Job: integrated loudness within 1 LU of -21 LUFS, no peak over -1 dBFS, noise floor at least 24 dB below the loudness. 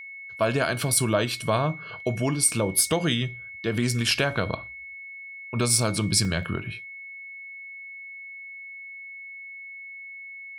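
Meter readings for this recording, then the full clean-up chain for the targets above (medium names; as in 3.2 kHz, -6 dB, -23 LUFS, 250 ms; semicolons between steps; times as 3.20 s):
dropouts 2; longest dropout 1.8 ms; steady tone 2.2 kHz; tone level -38 dBFS; loudness -24.5 LUFS; peak level -7.5 dBFS; loudness target -21.0 LUFS
-> interpolate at 4.11/6.25 s, 1.8 ms; band-stop 2.2 kHz, Q 30; trim +3.5 dB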